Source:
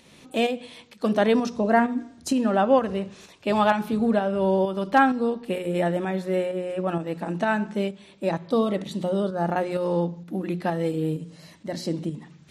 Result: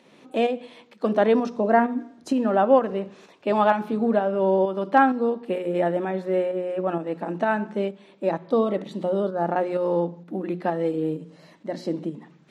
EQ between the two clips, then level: high-pass 250 Hz 12 dB/octave; treble shelf 2.2 kHz -11 dB; treble shelf 8 kHz -7.5 dB; +3.0 dB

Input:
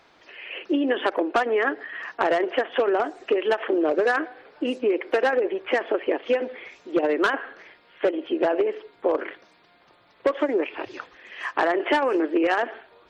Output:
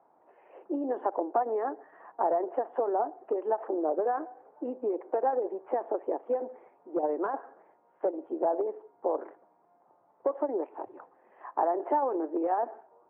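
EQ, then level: high-pass 160 Hz 12 dB/octave; four-pole ladder low-pass 970 Hz, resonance 55%; 0.0 dB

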